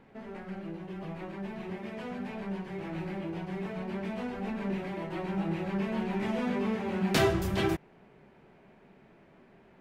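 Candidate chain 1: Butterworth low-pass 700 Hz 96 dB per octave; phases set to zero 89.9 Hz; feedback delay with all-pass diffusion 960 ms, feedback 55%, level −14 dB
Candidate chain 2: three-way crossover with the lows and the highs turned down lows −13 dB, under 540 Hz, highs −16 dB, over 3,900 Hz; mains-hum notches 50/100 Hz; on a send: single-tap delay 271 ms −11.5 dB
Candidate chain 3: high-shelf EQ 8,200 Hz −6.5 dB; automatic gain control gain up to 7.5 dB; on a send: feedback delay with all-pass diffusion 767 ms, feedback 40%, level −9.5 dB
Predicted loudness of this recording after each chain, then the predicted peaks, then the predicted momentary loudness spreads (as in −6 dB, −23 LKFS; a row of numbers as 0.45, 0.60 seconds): −36.5, −39.5, −26.0 LKFS; −17.0, −16.5, −6.0 dBFS; 16, 14, 16 LU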